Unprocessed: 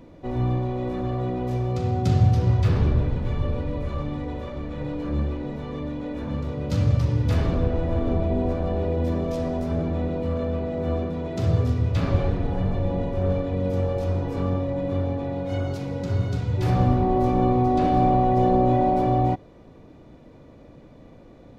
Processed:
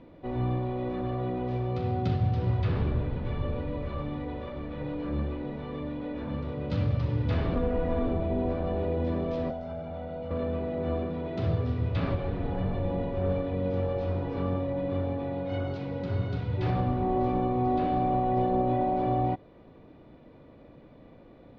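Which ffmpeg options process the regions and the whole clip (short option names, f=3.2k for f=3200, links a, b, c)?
-filter_complex "[0:a]asettb=1/sr,asplit=3[a][b][c];[a]atrim=end=7.554[d];[b]atrim=start=7.55:end=8.07,asetpts=PTS-STARTPTS,afade=t=in:d=0.004:c=qsin,afade=t=out:st=0.516:d=0.004:c=qsin,acrossover=split=2800[e][f];[f]acompressor=threshold=-59dB:ratio=4:attack=1:release=60[g];[e][g]amix=inputs=2:normalize=0,highshelf=f=4.6k:g=8,aecho=1:1:4.2:0.73,atrim=end_sample=22932[h];[c]atrim=start=8.066[i];[d][h]acrossfade=d=0.004:c1=hsin:c2=qsin[j];[j][i]acrossfade=d=0.004:c1=qsin:c2=hsin,asettb=1/sr,asplit=3[k][l][m];[k]atrim=end=9.504[n];[l]atrim=start=9.5:end=10.31,asetpts=PTS-STARTPTS,afade=t=in:d=0.004:c=qsin,afade=t=out:st=0.806:d=0.004:c=qsin,bass=f=250:g=-6,treble=f=4k:g=4,aecho=1:1:1.4:0.73,atrim=end_sample=35721,acrossover=split=480|1400[o][p][q];[o]acompressor=threshold=-33dB:ratio=4[r];[p]acompressor=threshold=-36dB:ratio=4[s];[q]acompressor=threshold=-57dB:ratio=4[t];[r][s][t]amix=inputs=3:normalize=0[u];[m]atrim=start=10.306[v];[n][u]acrossfade=d=0.004:c1=hsin:c2=qsin[w];[w][v]acrossfade=d=0.004:c1=qsin:c2=hsin,lowpass=f=4k:w=0.5412,lowpass=f=4k:w=1.3066,lowshelf=f=140:g=-4.5,alimiter=limit=-14.5dB:level=0:latency=1:release=323,volume=-3dB"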